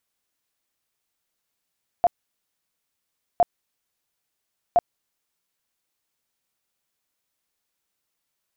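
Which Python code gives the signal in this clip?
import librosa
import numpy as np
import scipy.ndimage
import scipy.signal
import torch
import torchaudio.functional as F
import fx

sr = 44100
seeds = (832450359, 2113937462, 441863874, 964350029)

y = fx.tone_burst(sr, hz=700.0, cycles=20, every_s=1.36, bursts=3, level_db=-12.5)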